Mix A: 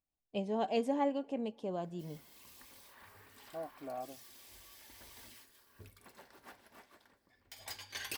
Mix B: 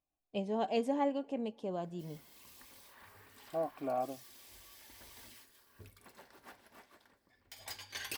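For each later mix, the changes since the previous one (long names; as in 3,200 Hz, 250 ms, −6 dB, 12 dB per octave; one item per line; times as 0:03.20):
second voice +7.5 dB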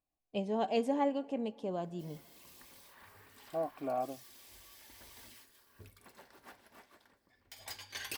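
first voice: send +7.5 dB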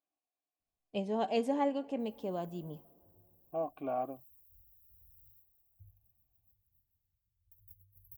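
first voice: entry +0.60 s
background: add inverse Chebyshev band-stop filter 350–6,400 Hz, stop band 60 dB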